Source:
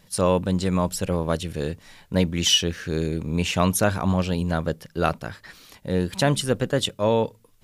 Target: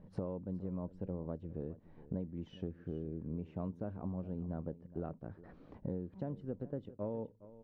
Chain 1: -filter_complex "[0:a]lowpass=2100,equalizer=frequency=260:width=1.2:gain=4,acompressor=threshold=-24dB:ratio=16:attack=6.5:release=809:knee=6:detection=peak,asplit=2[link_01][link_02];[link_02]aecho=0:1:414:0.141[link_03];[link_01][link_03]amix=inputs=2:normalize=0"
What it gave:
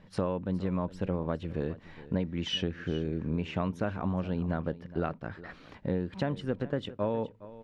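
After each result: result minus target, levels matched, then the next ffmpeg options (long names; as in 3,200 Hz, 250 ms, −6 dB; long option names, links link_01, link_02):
2,000 Hz band +14.0 dB; downward compressor: peak gain reduction −9 dB
-filter_complex "[0:a]lowpass=630,equalizer=frequency=260:width=1.2:gain=4,acompressor=threshold=-24dB:ratio=16:attack=6.5:release=809:knee=6:detection=peak,asplit=2[link_01][link_02];[link_02]aecho=0:1:414:0.141[link_03];[link_01][link_03]amix=inputs=2:normalize=0"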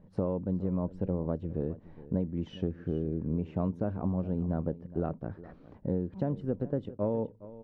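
downward compressor: peak gain reduction −9.5 dB
-filter_complex "[0:a]lowpass=630,equalizer=frequency=260:width=1.2:gain=4,acompressor=threshold=-34dB:ratio=16:attack=6.5:release=809:knee=6:detection=peak,asplit=2[link_01][link_02];[link_02]aecho=0:1:414:0.141[link_03];[link_01][link_03]amix=inputs=2:normalize=0"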